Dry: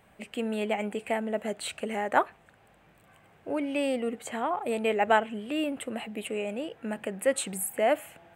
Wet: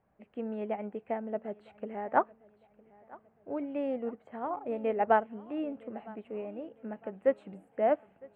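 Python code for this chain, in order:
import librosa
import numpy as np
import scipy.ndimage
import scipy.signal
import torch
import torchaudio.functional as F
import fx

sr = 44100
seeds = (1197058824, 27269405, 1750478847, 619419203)

p1 = scipy.signal.sosfilt(scipy.signal.butter(2, 1200.0, 'lowpass', fs=sr, output='sos'), x)
p2 = p1 + fx.echo_feedback(p1, sr, ms=958, feedback_pct=44, wet_db=-16.0, dry=0)
y = fx.upward_expand(p2, sr, threshold_db=-43.0, expansion=1.5)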